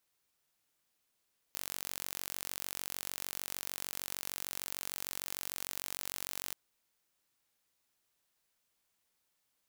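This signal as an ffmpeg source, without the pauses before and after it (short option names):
-f lavfi -i "aevalsrc='0.251*eq(mod(n,946),0)':d=4.98:s=44100"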